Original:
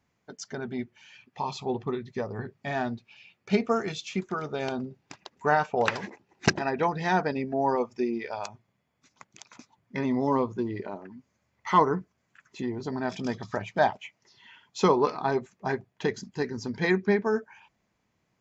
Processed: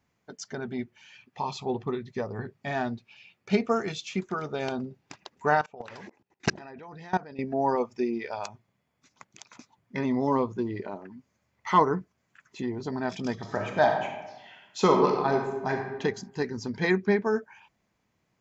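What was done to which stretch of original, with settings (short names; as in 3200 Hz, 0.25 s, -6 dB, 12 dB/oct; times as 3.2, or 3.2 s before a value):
5.61–7.39 level quantiser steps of 22 dB
13.33–15.9 reverb throw, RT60 1.1 s, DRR 2.5 dB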